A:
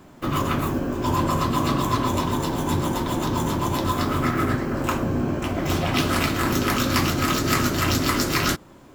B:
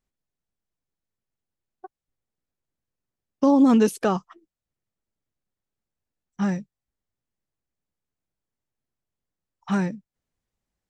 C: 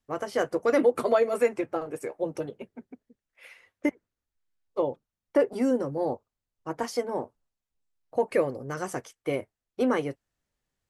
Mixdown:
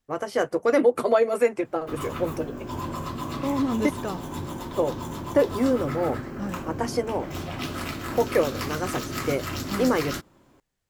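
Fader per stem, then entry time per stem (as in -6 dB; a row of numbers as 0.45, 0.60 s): -10.0, -9.5, +2.5 dB; 1.65, 0.00, 0.00 s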